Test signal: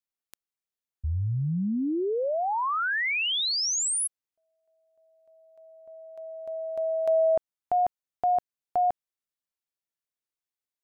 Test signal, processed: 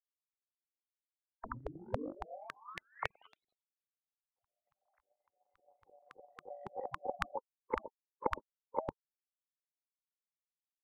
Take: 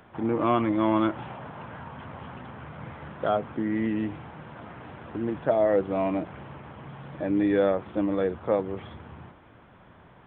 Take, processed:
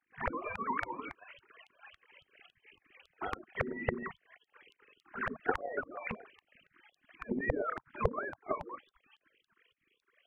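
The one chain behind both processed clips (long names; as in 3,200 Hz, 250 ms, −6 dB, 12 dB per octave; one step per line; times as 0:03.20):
three sine waves on the formant tracks
treble cut that deepens with the level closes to 760 Hz, closed at −22.5 dBFS
dynamic equaliser 250 Hz, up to +6 dB, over −44 dBFS, Q 1.9
auto-filter low-pass saw up 3.6 Hz 250–2,400 Hz
gate on every frequency bin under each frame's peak −30 dB weak
level +18 dB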